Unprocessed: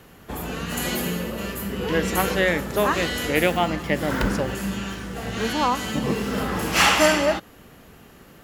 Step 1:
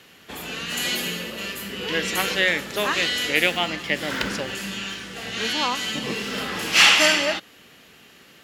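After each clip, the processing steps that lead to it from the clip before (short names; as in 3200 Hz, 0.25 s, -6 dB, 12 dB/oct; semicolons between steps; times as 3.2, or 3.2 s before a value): weighting filter D; gain -4.5 dB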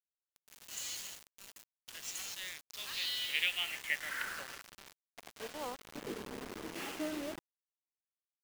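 band-pass sweep 6500 Hz -> 330 Hz, 2.49–6.22; bit-crush 6-bit; gain -8 dB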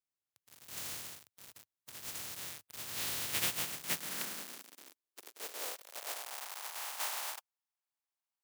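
spectral contrast lowered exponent 0.18; high-pass sweep 100 Hz -> 830 Hz, 3.28–6.48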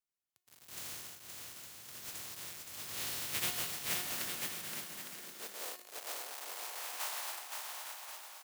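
resonator 360 Hz, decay 0.77 s, mix 70%; bouncing-ball echo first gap 0.52 s, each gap 0.65×, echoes 5; gain +7.5 dB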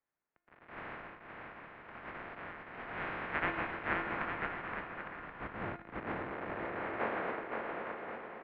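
mistuned SSB -390 Hz 490–2400 Hz; gain +10 dB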